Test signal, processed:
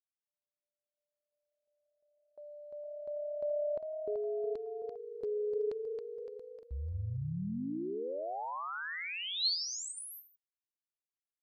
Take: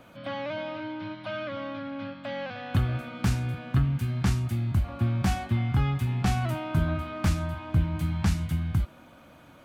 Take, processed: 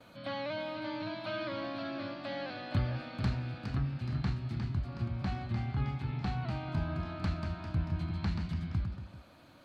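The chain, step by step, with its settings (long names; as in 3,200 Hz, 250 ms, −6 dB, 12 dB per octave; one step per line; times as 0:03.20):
treble cut that deepens with the level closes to 2,700 Hz, closed at −22 dBFS
noise gate with hold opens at −44 dBFS
parametric band 4,200 Hz +13.5 dB 0.21 octaves
delay with pitch and tempo change per echo 594 ms, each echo +1 semitone, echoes 3, each echo −6 dB
speech leveller within 4 dB 2 s
level −8 dB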